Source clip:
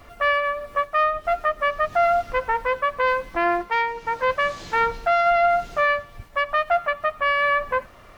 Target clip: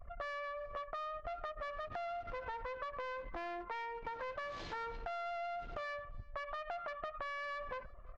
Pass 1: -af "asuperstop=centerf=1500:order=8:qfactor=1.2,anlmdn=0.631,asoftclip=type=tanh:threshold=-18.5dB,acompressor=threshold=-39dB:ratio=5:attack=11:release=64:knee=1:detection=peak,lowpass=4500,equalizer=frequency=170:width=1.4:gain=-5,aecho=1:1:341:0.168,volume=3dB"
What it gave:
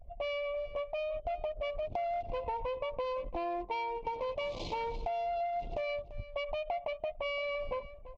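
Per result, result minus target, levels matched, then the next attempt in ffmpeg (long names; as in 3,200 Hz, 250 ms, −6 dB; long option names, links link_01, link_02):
downward compressor: peak gain reduction −7.5 dB; echo-to-direct +10 dB; 2,000 Hz band −4.5 dB
-af "asuperstop=centerf=1500:order=8:qfactor=1.2,anlmdn=0.631,asoftclip=type=tanh:threshold=-18.5dB,acompressor=threshold=-48dB:ratio=5:attack=11:release=64:knee=1:detection=peak,lowpass=4500,equalizer=frequency=170:width=1.4:gain=-5,aecho=1:1:341:0.168,volume=3dB"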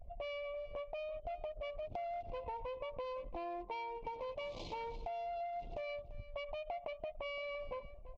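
echo-to-direct +10 dB; 2,000 Hz band −4.5 dB
-af "asuperstop=centerf=1500:order=8:qfactor=1.2,anlmdn=0.631,asoftclip=type=tanh:threshold=-18.5dB,acompressor=threshold=-48dB:ratio=5:attack=11:release=64:knee=1:detection=peak,lowpass=4500,equalizer=frequency=170:width=1.4:gain=-5,aecho=1:1:341:0.0531,volume=3dB"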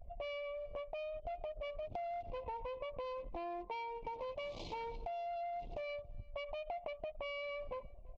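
2,000 Hz band −4.5 dB
-af "anlmdn=0.631,asoftclip=type=tanh:threshold=-18.5dB,acompressor=threshold=-48dB:ratio=5:attack=11:release=64:knee=1:detection=peak,lowpass=4500,equalizer=frequency=170:width=1.4:gain=-5,aecho=1:1:341:0.0531,volume=3dB"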